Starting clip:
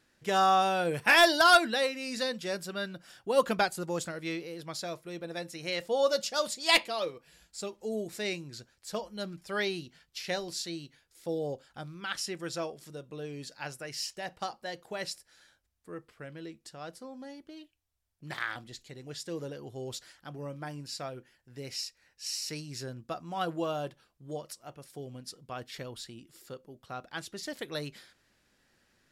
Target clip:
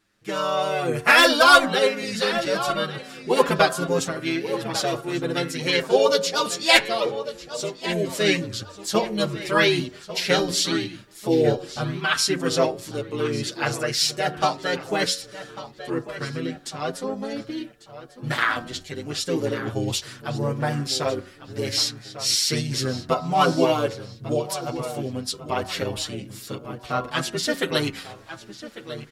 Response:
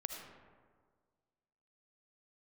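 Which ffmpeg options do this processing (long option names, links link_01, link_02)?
-filter_complex "[0:a]asplit=2[link_01][link_02];[link_02]asetrate=35002,aresample=44100,atempo=1.25992,volume=-4dB[link_03];[link_01][link_03]amix=inputs=2:normalize=0,bandreject=frequency=92.04:width_type=h:width=4,bandreject=frequency=184.08:width_type=h:width=4,bandreject=frequency=276.12:width_type=h:width=4,bandreject=frequency=368.16:width_type=h:width=4,bandreject=frequency=460.2:width_type=h:width=4,bandreject=frequency=552.24:width_type=h:width=4,bandreject=frequency=644.28:width_type=h:width=4,bandreject=frequency=736.32:width_type=h:width=4,bandreject=frequency=828.36:width_type=h:width=4,bandreject=frequency=920.4:width_type=h:width=4,bandreject=frequency=1012.44:width_type=h:width=4,bandreject=frequency=1104.48:width_type=h:width=4,bandreject=frequency=1196.52:width_type=h:width=4,bandreject=frequency=1288.56:width_type=h:width=4,bandreject=frequency=1380.6:width_type=h:width=4,bandreject=frequency=1472.64:width_type=h:width=4,bandreject=frequency=1564.68:width_type=h:width=4,bandreject=frequency=1656.72:width_type=h:width=4,bandreject=frequency=1748.76:width_type=h:width=4,bandreject=frequency=1840.8:width_type=h:width=4,dynaudnorm=framelen=520:gausssize=3:maxgain=14dB,asplit=2[link_04][link_05];[link_05]adelay=1147,lowpass=frequency=4500:poles=1,volume=-13dB,asplit=2[link_06][link_07];[link_07]adelay=1147,lowpass=frequency=4500:poles=1,volume=0.38,asplit=2[link_08][link_09];[link_09]adelay=1147,lowpass=frequency=4500:poles=1,volume=0.38,asplit=2[link_10][link_11];[link_11]adelay=1147,lowpass=frequency=4500:poles=1,volume=0.38[link_12];[link_06][link_08][link_10][link_12]amix=inputs=4:normalize=0[link_13];[link_04][link_13]amix=inputs=2:normalize=0,asplit=2[link_14][link_15];[link_15]adelay=7,afreqshift=0.46[link_16];[link_14][link_16]amix=inputs=2:normalize=1,volume=2dB"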